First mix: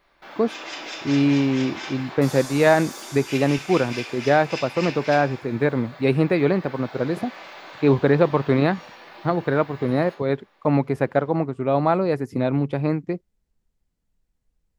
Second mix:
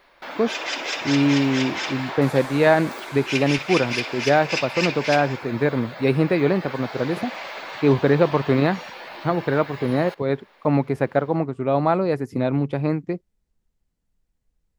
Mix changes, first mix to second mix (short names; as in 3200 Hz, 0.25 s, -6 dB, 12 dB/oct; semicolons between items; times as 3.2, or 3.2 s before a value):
first sound +9.5 dB; second sound -3.5 dB; reverb: off